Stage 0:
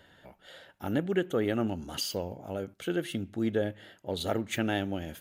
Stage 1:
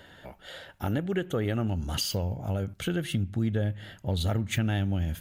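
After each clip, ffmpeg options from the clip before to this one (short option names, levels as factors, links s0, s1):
-af "asubboost=boost=9:cutoff=130,acompressor=threshold=0.0178:ratio=2.5,volume=2.24"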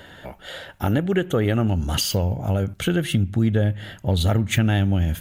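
-af "equalizer=f=4800:w=2.9:g=-2.5,volume=2.51"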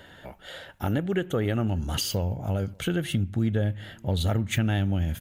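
-filter_complex "[0:a]asplit=2[s0][s1];[s1]adelay=583.1,volume=0.0398,highshelf=f=4000:g=-13.1[s2];[s0][s2]amix=inputs=2:normalize=0,volume=0.531"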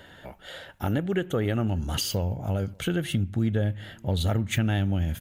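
-af anull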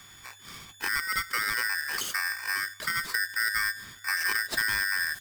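-af "aeval=exprs='val(0)+0.00398*sin(2*PI*5200*n/s)':c=same,aeval=exprs='val(0)*sgn(sin(2*PI*1700*n/s))':c=same,volume=0.668"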